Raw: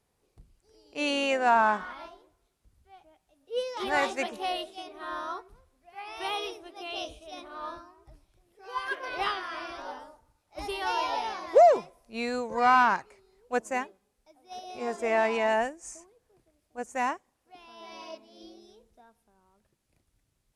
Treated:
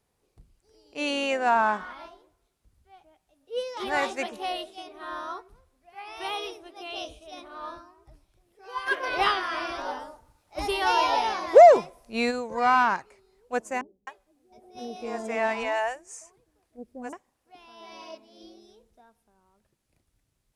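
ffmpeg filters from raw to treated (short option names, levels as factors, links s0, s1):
-filter_complex "[0:a]asplit=3[s0][s1][s2];[s0]afade=t=out:st=8.86:d=0.02[s3];[s1]acontrast=65,afade=t=in:st=8.86:d=0.02,afade=t=out:st=12.3:d=0.02[s4];[s2]afade=t=in:st=12.3:d=0.02[s5];[s3][s4][s5]amix=inputs=3:normalize=0,asettb=1/sr,asplit=3[s6][s7][s8];[s6]atrim=end=13.814[s9];[s7]atrim=start=13.81:end=17.13,asetpts=PTS-STARTPTS,afade=t=in:d=0.004:c=qsin,afade=t=out:st=3.316:d=0.004:c=qsin,acrossover=split=470[s10][s11];[s11]adelay=260[s12];[s10][s12]amix=inputs=2:normalize=0,atrim=end_sample=146412[s13];[s8]atrim=start=17.126[s14];[s9][s13]acrossfade=d=0.004:c1=hsin:c2=qsin[s15];[s15][s14]acrossfade=d=0.004:c1=qsin:c2=hsin"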